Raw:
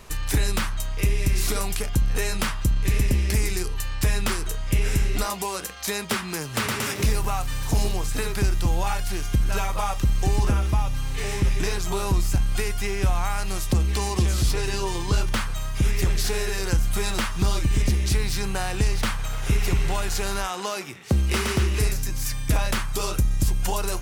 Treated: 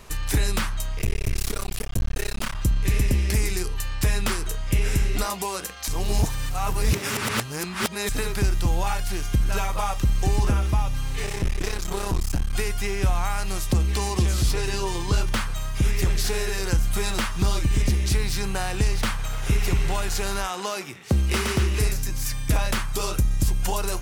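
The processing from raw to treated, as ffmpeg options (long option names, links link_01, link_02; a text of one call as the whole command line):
ffmpeg -i in.wav -filter_complex "[0:a]asettb=1/sr,asplit=3[link_01][link_02][link_03];[link_01]atrim=end=0.994[link_04];[link_02]atrim=start=0.99:end=2.55,asetpts=PTS-STARTPTS,afade=type=in:duration=0.004:curve=qsin,afade=type=out:start_time=1.556:duration=0.004:curve=qsin,aeval=exprs='max(val(0),0)':channel_layout=same[link_05];[link_03]atrim=start=2.546[link_06];[link_04][link_05]acrossfade=duration=0.004:curve1=hsin:curve2=qsin[link_07];[link_07][link_06]acrossfade=duration=0.004:curve1=qsin:curve2=hsin,asettb=1/sr,asplit=3[link_08][link_09][link_10];[link_08]atrim=end=11.254[link_11];[link_09]atrim=start=11.25:end=12.53,asetpts=PTS-STARTPTS,afade=type=in:duration=0.004:curve=qsin,afade=type=out:start_time=1.276:duration=0.004:curve=qsin,aeval=exprs='clip(val(0),-1,0.0299)':channel_layout=same[link_12];[link_10]atrim=start=12.526[link_13];[link_11][link_12]acrossfade=duration=0.004:curve1=hsin:curve2=qsin[link_14];[link_14][link_13]acrossfade=duration=0.004:curve1=qsin:curve2=hsin,asplit=3[link_15][link_16][link_17];[link_15]atrim=end=5.882[link_18];[link_16]atrim=start=5.878:end=8.092,asetpts=PTS-STARTPTS,areverse[link_19];[link_17]atrim=start=8.088[link_20];[link_18][link_19]acrossfade=duration=0.004:curve1=hsin:curve2=hsin[link_21];[link_21][link_20]acrossfade=duration=0.004:curve1=hsin:curve2=hsin" out.wav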